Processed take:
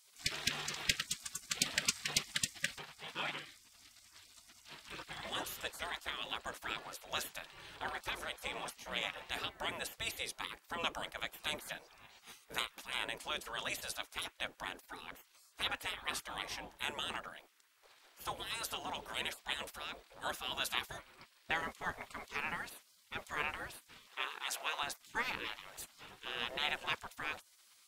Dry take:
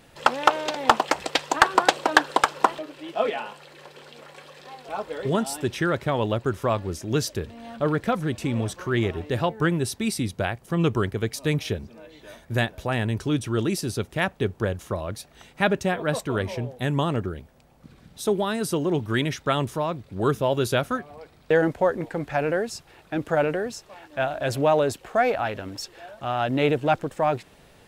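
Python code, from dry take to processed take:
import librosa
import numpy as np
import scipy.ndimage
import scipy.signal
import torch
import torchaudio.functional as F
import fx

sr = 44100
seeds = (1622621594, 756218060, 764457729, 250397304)

y = fx.spec_gate(x, sr, threshold_db=-20, keep='weak')
y = fx.highpass(y, sr, hz=570.0, slope=12, at=(24.07, 24.83))
y = y * 10.0 ** (-1.0 / 20.0)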